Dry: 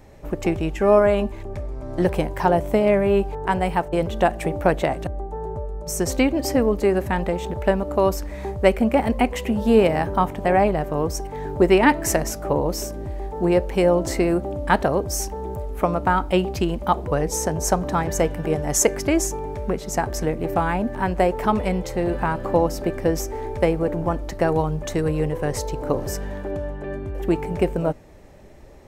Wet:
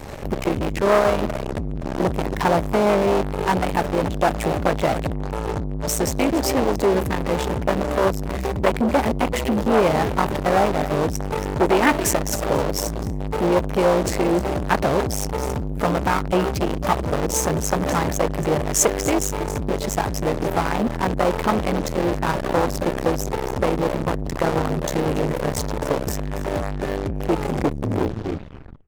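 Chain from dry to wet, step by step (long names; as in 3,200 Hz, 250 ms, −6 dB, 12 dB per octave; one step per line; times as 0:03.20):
turntable brake at the end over 1.51 s
single-tap delay 277 ms −17 dB
in parallel at −8 dB: fuzz pedal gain 42 dB, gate −47 dBFS
on the sum: saturating transformer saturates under 1,100 Hz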